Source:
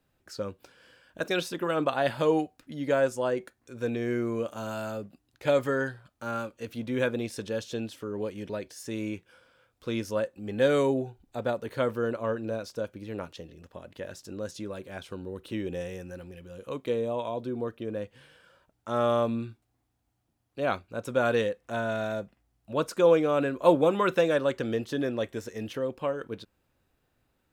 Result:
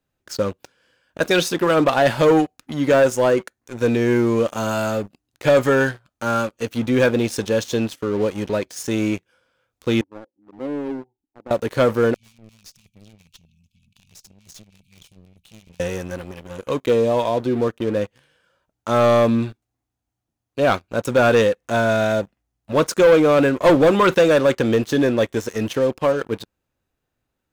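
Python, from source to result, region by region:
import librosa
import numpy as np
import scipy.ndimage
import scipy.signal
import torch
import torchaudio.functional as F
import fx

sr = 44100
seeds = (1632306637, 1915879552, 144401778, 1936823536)

y = fx.chain(x, sr, fx.formant_cascade(vowel='u'),
    fx.low_shelf(hz=340.0, db=-12.0), at=(10.01, 11.51))
y = fx.chain(y, sr, fx.tube_stage(drive_db=44.0, bias=0.35),
    fx.brickwall_bandstop(low_hz=240.0, high_hz=2200.0), at=(12.14, 15.8))
y = fx.peak_eq(y, sr, hz=6400.0, db=5.0, octaves=0.25)
y = fx.leveller(y, sr, passes=3)
y = y * librosa.db_to_amplitude(1.0)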